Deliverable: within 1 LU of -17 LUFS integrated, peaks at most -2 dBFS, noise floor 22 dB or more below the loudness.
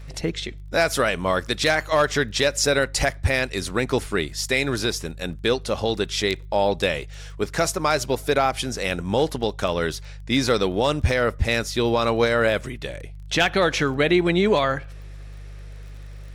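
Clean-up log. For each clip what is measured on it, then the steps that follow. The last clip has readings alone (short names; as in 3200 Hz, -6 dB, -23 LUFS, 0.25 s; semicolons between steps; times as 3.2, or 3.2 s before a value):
ticks 21/s; hum 50 Hz; harmonics up to 150 Hz; hum level -35 dBFS; loudness -22.5 LUFS; peak -9.0 dBFS; loudness target -17.0 LUFS
-> de-click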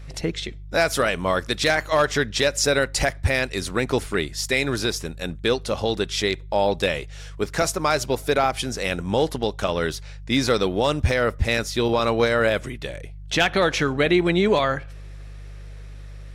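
ticks 0.061/s; hum 50 Hz; harmonics up to 150 Hz; hum level -36 dBFS
-> de-hum 50 Hz, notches 3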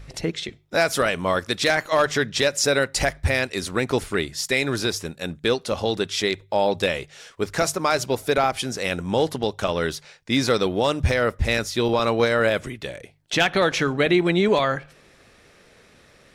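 hum none; loudness -22.5 LUFS; peak -8.0 dBFS; loudness target -17.0 LUFS
-> gain +5.5 dB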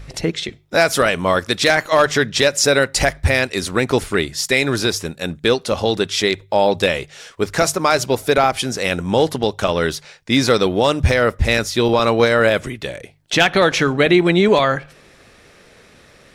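loudness -17.0 LUFS; peak -2.5 dBFS; noise floor -49 dBFS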